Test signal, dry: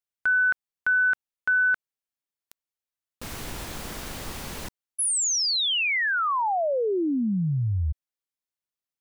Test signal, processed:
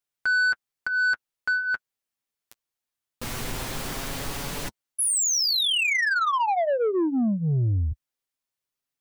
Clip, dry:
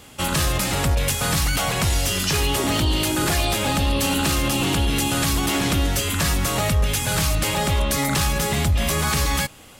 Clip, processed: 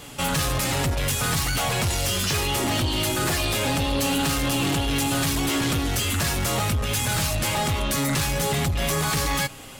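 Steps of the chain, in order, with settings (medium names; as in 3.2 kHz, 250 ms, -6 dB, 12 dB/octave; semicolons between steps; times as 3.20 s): in parallel at -1 dB: peak limiter -22.5 dBFS; on the sum: flange 0.22 Hz, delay 6.9 ms, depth 2 ms, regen -23%; saturation -21.5 dBFS; trim +2.5 dB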